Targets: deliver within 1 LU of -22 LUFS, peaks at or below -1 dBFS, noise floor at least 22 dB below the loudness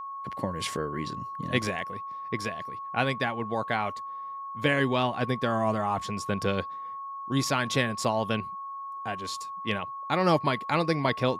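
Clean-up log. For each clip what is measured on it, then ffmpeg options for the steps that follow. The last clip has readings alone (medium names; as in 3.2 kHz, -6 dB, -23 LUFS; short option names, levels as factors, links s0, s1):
steady tone 1.1 kHz; tone level -35 dBFS; loudness -29.5 LUFS; peak level -10.5 dBFS; loudness target -22.0 LUFS
-> -af "bandreject=f=1100:w=30"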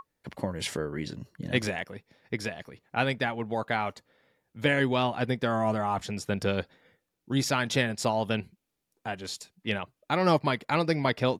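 steady tone not found; loudness -29.5 LUFS; peak level -11.0 dBFS; loudness target -22.0 LUFS
-> -af "volume=2.37"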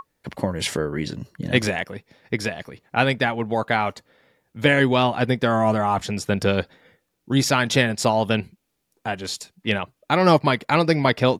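loudness -22.0 LUFS; peak level -3.5 dBFS; noise floor -75 dBFS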